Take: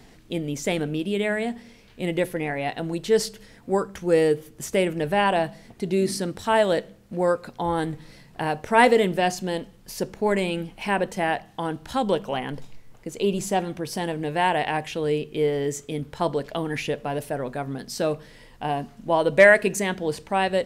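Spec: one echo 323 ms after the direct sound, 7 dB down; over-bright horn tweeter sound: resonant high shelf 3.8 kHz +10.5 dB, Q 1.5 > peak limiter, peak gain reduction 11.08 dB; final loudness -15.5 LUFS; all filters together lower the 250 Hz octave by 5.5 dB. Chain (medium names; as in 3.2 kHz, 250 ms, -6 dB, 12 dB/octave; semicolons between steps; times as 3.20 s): peaking EQ 250 Hz -8.5 dB; resonant high shelf 3.8 kHz +10.5 dB, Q 1.5; delay 323 ms -7 dB; trim +11 dB; peak limiter -3.5 dBFS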